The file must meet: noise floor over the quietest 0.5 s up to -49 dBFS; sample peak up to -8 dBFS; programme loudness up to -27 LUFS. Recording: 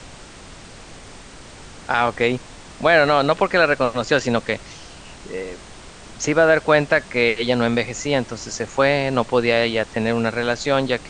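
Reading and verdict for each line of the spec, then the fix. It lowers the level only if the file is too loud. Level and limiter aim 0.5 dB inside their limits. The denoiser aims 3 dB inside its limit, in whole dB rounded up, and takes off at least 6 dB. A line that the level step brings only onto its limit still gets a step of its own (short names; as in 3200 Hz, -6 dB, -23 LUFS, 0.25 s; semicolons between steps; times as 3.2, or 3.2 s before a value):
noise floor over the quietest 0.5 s -40 dBFS: fail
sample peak -3.5 dBFS: fail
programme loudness -19.0 LUFS: fail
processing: denoiser 6 dB, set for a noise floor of -40 dBFS; gain -8.5 dB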